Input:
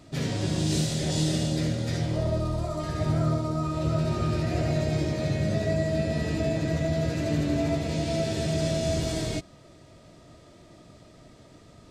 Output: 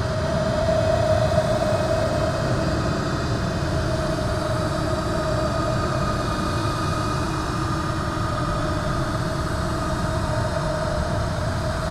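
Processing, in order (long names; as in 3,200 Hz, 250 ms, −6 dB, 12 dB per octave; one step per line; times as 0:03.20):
extreme stretch with random phases 44×, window 0.05 s, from 0:02.31
noise in a band 780–1,600 Hz −42 dBFS
tilt shelving filter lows −4.5 dB
on a send: echo with shifted repeats 244 ms, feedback 35%, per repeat +45 Hz, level −8 dB
on the sum: level +6.5 dB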